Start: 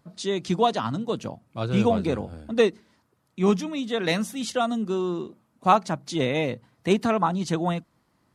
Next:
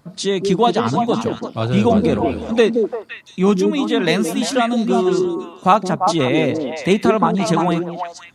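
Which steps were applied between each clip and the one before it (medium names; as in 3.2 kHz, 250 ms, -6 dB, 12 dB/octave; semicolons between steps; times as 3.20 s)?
in parallel at 0 dB: compression, threshold -28 dBFS, peak gain reduction 14.5 dB; on the sum: repeats whose band climbs or falls 172 ms, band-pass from 310 Hz, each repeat 1.4 oct, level 0 dB; trim +3.5 dB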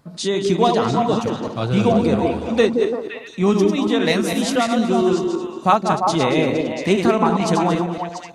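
backward echo that repeats 114 ms, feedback 44%, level -6 dB; trim -2 dB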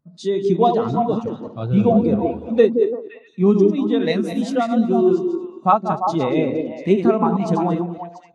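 spectral contrast expander 1.5:1; trim -1 dB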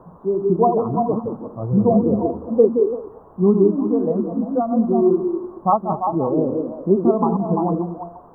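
added noise white -34 dBFS; elliptic low-pass 1.1 kHz, stop band 50 dB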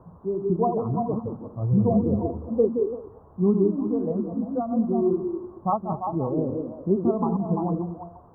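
peaking EQ 86 Hz +14 dB 1.4 oct; trim -8 dB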